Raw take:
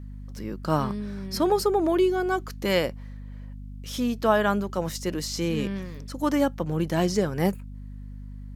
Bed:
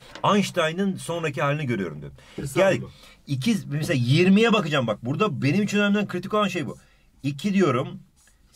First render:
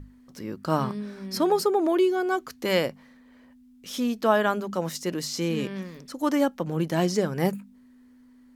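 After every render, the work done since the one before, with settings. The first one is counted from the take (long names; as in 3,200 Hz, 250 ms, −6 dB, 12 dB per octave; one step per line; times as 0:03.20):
mains-hum notches 50/100/150/200 Hz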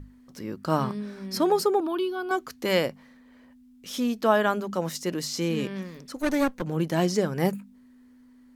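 0:01.80–0:02.31: phaser with its sweep stopped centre 2,000 Hz, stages 6
0:06.16–0:06.62: lower of the sound and its delayed copy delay 0.48 ms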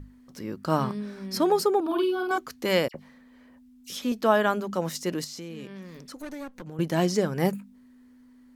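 0:01.81–0:02.38: double-tracking delay 49 ms −3 dB
0:02.88–0:04.12: all-pass dispersion lows, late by 63 ms, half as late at 2,600 Hz
0:05.24–0:06.79: downward compressor 3 to 1, threshold −39 dBFS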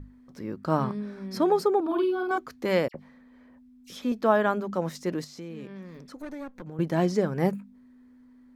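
high-shelf EQ 3,500 Hz −11.5 dB
notch filter 2,900 Hz, Q 17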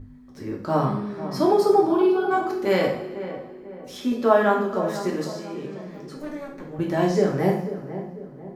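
feedback echo with a low-pass in the loop 494 ms, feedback 46%, low-pass 1,300 Hz, level −11 dB
coupled-rooms reverb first 0.56 s, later 2.1 s, from −18 dB, DRR −2 dB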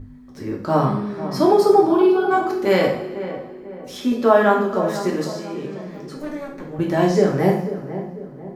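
level +4 dB
brickwall limiter −2 dBFS, peak gain reduction 1.5 dB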